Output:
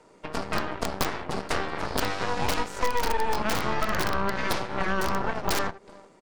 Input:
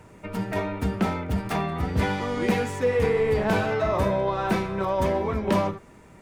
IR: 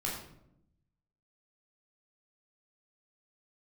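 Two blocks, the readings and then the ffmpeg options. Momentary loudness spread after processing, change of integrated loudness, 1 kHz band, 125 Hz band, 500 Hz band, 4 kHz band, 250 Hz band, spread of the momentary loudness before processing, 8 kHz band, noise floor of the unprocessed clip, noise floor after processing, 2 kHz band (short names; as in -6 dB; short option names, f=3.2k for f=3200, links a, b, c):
4 LU, -3.5 dB, +0.5 dB, -8.5 dB, -7.0 dB, +5.5 dB, -7.0 dB, 6 LU, +7.5 dB, -50 dBFS, -55 dBFS, +1.5 dB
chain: -af "aecho=1:1:372:0.0708,aeval=exprs='(mod(5.31*val(0)+1,2)-1)/5.31':c=same,highpass=280,equalizer=f=470:t=q:w=4:g=3,equalizer=f=1.7k:t=q:w=4:g=-6,equalizer=f=2.5k:t=q:w=4:g=-5,equalizer=f=4.6k:t=q:w=4:g=6,lowpass=f=9.5k:w=0.5412,lowpass=f=9.5k:w=1.3066,aeval=exprs='0.422*(cos(1*acos(clip(val(0)/0.422,-1,1)))-cos(1*PI/2))+0.0335*(cos(3*acos(clip(val(0)/0.422,-1,1)))-cos(3*PI/2))+0.0188*(cos(7*acos(clip(val(0)/0.422,-1,1)))-cos(7*PI/2))+0.168*(cos(8*acos(clip(val(0)/0.422,-1,1)))-cos(8*PI/2))':c=same,acompressor=threshold=-27dB:ratio=3,volume=3dB"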